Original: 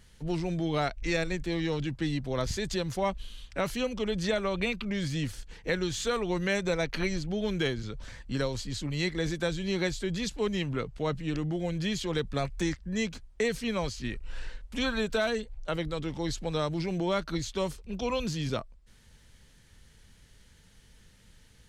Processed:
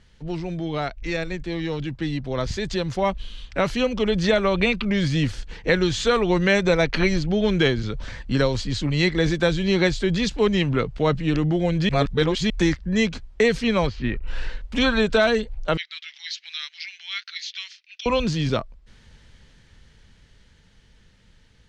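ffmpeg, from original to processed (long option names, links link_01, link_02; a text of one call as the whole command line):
ffmpeg -i in.wav -filter_complex "[0:a]asplit=3[link_01][link_02][link_03];[link_01]afade=type=out:start_time=13.86:duration=0.02[link_04];[link_02]lowpass=2600,afade=type=in:start_time=13.86:duration=0.02,afade=type=out:start_time=14.26:duration=0.02[link_05];[link_03]afade=type=in:start_time=14.26:duration=0.02[link_06];[link_04][link_05][link_06]amix=inputs=3:normalize=0,asettb=1/sr,asplit=3[link_07][link_08][link_09];[link_07]atrim=end=15.774[link_10];[link_08]atrim=start=15.77:end=18.06,asetpts=PTS-STARTPTS,afade=type=in:duration=0.004:curve=qsin,afade=type=out:start_time=2.286:duration=0.004:curve=qsin,asuperpass=centerf=3400:order=8:qfactor=0.81[link_11];[link_09]atrim=start=18.056[link_12];[link_10][link_11]acrossfade=duration=0.004:curve1=hsin:curve2=qsin[link_13];[link_13][link_12]acrossfade=duration=0.004:curve1=qsin:curve2=hsin,asplit=3[link_14][link_15][link_16];[link_14]atrim=end=11.892[link_17];[link_15]atrim=start=11.888:end=12.502,asetpts=PTS-STARTPTS,areverse[link_18];[link_16]atrim=start=12.498[link_19];[link_17][link_18]acrossfade=duration=0.004:curve1=hsin:curve2=hsin[link_20];[link_20][link_19]acrossfade=duration=0.004:curve1=hsin:curve2=hsin,lowpass=5100,dynaudnorm=framelen=360:gausssize=17:maxgain=8dB,volume=2dB" out.wav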